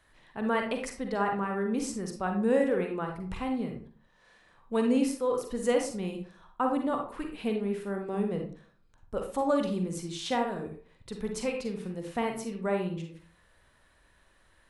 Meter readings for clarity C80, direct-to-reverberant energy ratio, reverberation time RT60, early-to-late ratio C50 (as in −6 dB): 11.0 dB, 3.0 dB, 0.45 s, 5.0 dB